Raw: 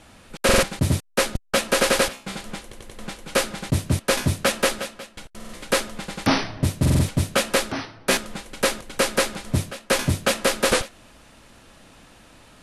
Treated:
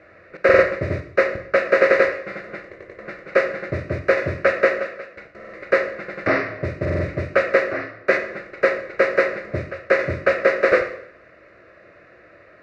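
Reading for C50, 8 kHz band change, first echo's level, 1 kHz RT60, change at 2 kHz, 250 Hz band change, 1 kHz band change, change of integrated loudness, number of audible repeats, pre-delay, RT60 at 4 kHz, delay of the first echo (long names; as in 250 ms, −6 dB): 10.0 dB, below −20 dB, no echo audible, 0.65 s, +5.0 dB, −3.0 dB, +1.0 dB, +2.5 dB, no echo audible, 16 ms, 0.60 s, no echo audible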